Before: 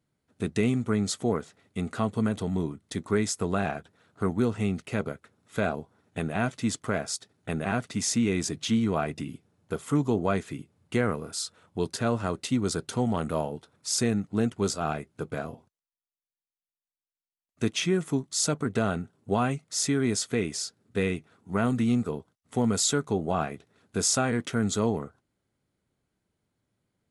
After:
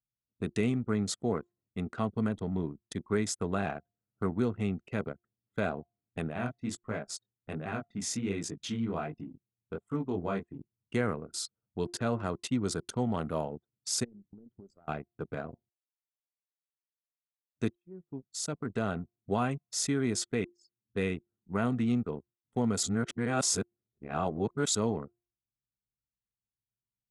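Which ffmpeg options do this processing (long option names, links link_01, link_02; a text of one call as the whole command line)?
ffmpeg -i in.wav -filter_complex "[0:a]asplit=3[link_01][link_02][link_03];[link_01]afade=type=out:start_time=6.33:duration=0.02[link_04];[link_02]flanger=delay=18:depth=7.4:speed=1.3,afade=type=in:start_time=6.33:duration=0.02,afade=type=out:start_time=10.58:duration=0.02[link_05];[link_03]afade=type=in:start_time=10.58:duration=0.02[link_06];[link_04][link_05][link_06]amix=inputs=3:normalize=0,asplit=3[link_07][link_08][link_09];[link_07]afade=type=out:start_time=14.03:duration=0.02[link_10];[link_08]acompressor=threshold=-39dB:ratio=10:attack=3.2:release=140:knee=1:detection=peak,afade=type=in:start_time=14.03:duration=0.02,afade=type=out:start_time=14.87:duration=0.02[link_11];[link_09]afade=type=in:start_time=14.87:duration=0.02[link_12];[link_10][link_11][link_12]amix=inputs=3:normalize=0,asplit=5[link_13][link_14][link_15][link_16][link_17];[link_13]atrim=end=17.75,asetpts=PTS-STARTPTS,afade=type=out:start_time=17.746:duration=0.004:curve=hsin[link_18];[link_14]atrim=start=17.75:end=20.45,asetpts=PTS-STARTPTS,afade=type=in:duration=1.27,afade=type=out:start_time=2.696:duration=0.004:curve=hsin[link_19];[link_15]atrim=start=20.45:end=22.832,asetpts=PTS-STARTPTS,afade=type=in:duration=0.58[link_20];[link_16]atrim=start=22.828:end=24.752,asetpts=PTS-STARTPTS,areverse[link_21];[link_17]atrim=start=24.748[link_22];[link_18][link_19][link_20]concat=n=3:v=0:a=1[link_23];[link_23][link_21]acrossfade=duration=0.004:curve1=hsin:curve2=hsin[link_24];[link_24][link_22]acrossfade=duration=0.004:curve1=hsin:curve2=hsin,highpass=47,bandreject=frequency=350.3:width_type=h:width=4,bandreject=frequency=700.6:width_type=h:width=4,bandreject=frequency=1050.9:width_type=h:width=4,anlmdn=2.51,volume=-4dB" out.wav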